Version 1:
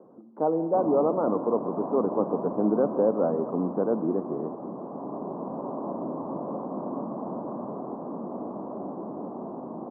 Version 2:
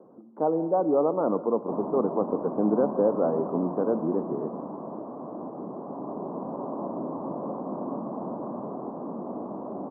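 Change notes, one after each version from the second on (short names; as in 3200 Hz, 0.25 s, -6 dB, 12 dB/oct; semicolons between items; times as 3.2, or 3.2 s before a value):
background: entry +0.95 s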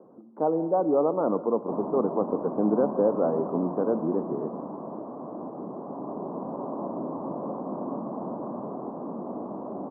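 none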